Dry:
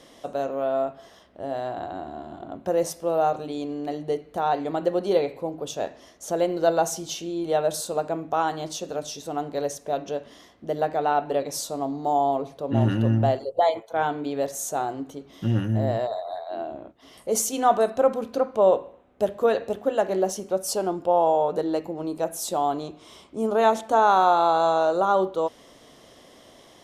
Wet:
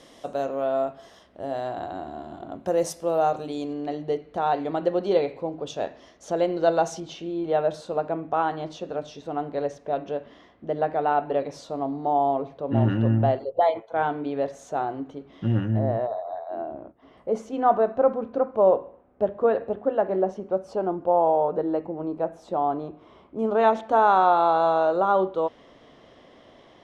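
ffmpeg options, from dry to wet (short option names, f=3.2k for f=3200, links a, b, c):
-af "asetnsamples=n=441:p=0,asendcmd='3.73 lowpass f 4500;7 lowpass f 2600;15.79 lowpass f 1500;23.39 lowpass f 2900',lowpass=11k"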